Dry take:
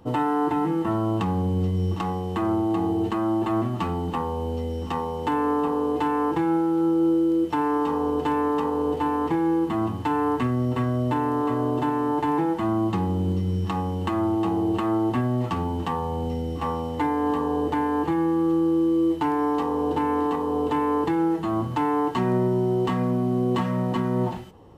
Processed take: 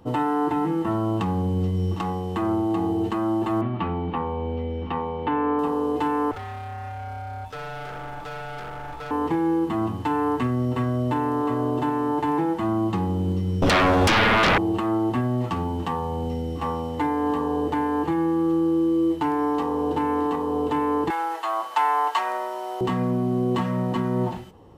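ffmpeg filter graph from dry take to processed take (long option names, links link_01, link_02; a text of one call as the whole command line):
ffmpeg -i in.wav -filter_complex "[0:a]asettb=1/sr,asplit=3[link_01][link_02][link_03];[link_01]atrim=end=3.614[link_04];[link_02]atrim=start=3.61:end=5.59,asetpts=PTS-STARTPTS,afade=type=in:duration=0.004:curve=qsin,afade=type=out:start_time=1.976:duration=0.004:curve=qsin,lowpass=frequency=3300:width=0.5412,lowpass=frequency=3300:width=1.3066,aeval=exprs='val(0)+0.00178*sin(2*PI*2300*n/s)':channel_layout=same[link_05];[link_03]atrim=start=5.586[link_06];[link_04][link_05]acrossfade=duration=0.004:curve1=hsin:curve2=qsin[link_07];[link_07][link_06]acrossfade=duration=0.004:curve1=qsin:curve2=hsin,asettb=1/sr,asplit=3[link_08][link_09][link_10];[link_08]atrim=end=6.314[link_11];[link_09]atrim=start=6.31:end=9.11,asetpts=PTS-STARTPTS,afade=type=in:duration=0.004:curve=qsin,afade=type=out:start_time=2.796:duration=0.004:curve=qsin,highpass=frequency=430:poles=1,asoftclip=type=hard:threshold=-29.5dB,aeval=exprs='val(0)*sin(2*PI*430*n/s)':channel_layout=same[link_12];[link_10]atrim=start=9.106[link_13];[link_11][link_12]acrossfade=duration=0.004:curve1=hsin:curve2=qsin[link_14];[link_14][link_13]acrossfade=duration=0.004:curve1=qsin:curve2=hsin,asettb=1/sr,asplit=3[link_15][link_16][link_17];[link_15]atrim=end=13.624[link_18];[link_16]atrim=start=13.62:end=14.58,asetpts=PTS-STARTPTS,afade=type=in:duration=0.004:curve=qsin,afade=type=out:start_time=0.956:duration=0.004:curve=qsin,lowpass=frequency=4000:poles=1,aeval=exprs='0.178*sin(PI/2*5.62*val(0)/0.178)':channel_layout=same[link_19];[link_17]atrim=start=14.576[link_20];[link_18][link_19]acrossfade=duration=0.004:curve1=hsin:curve2=qsin[link_21];[link_21][link_20]acrossfade=duration=0.004:curve1=qsin:curve2=hsin,asettb=1/sr,asplit=3[link_22][link_23][link_24];[link_22]atrim=end=21.104[link_25];[link_23]atrim=start=21.1:end=22.81,asetpts=PTS-STARTPTS,afade=type=in:duration=0.004:curve=qsin,afade=type=out:start_time=1.706:duration=0.004:curve=qsin,highpass=frequency=670:width=0.5412,highpass=frequency=670:width=1.3066,acontrast=60[link_26];[link_24]atrim=start=22.806[link_27];[link_25][link_26]acrossfade=duration=0.004:curve1=hsin:curve2=qsin[link_28];[link_28][link_27]acrossfade=duration=0.004:curve1=qsin:curve2=hsin" out.wav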